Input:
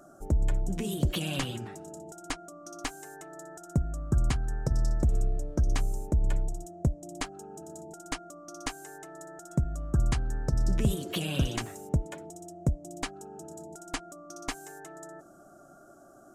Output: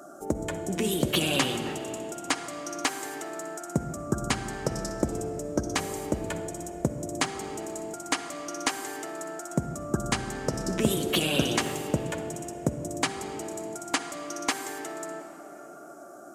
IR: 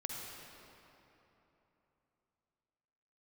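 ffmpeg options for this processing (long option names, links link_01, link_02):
-filter_complex "[0:a]highpass=260,asplit=2[link_01][link_02];[1:a]atrim=start_sample=2205,lowshelf=frequency=63:gain=11.5[link_03];[link_02][link_03]afir=irnorm=-1:irlink=0,volume=-3.5dB[link_04];[link_01][link_04]amix=inputs=2:normalize=0,volume=5dB"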